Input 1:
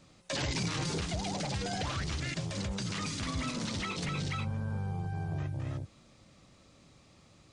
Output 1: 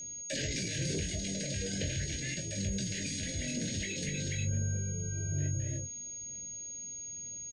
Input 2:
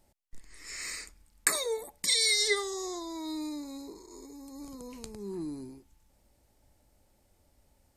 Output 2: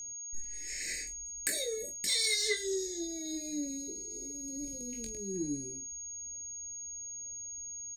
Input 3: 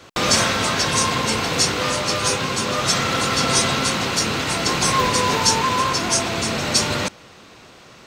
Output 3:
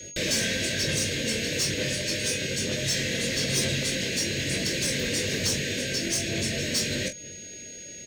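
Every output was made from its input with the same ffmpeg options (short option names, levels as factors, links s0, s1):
-filter_complex "[0:a]asplit=2[s0][s1];[s1]acompressor=threshold=0.0316:ratio=6,volume=0.944[s2];[s0][s2]amix=inputs=2:normalize=0,aphaser=in_gain=1:out_gain=1:delay=4.5:decay=0.29:speed=1.1:type=sinusoidal,asuperstop=centerf=1000:order=20:qfactor=1.1,asoftclip=type=tanh:threshold=0.224,asplit=2[s3][s4];[s4]aecho=0:1:21|44:0.531|0.251[s5];[s3][s5]amix=inputs=2:normalize=0,aeval=exprs='val(0)+0.0251*sin(2*PI*6600*n/s)':c=same,volume=0.398"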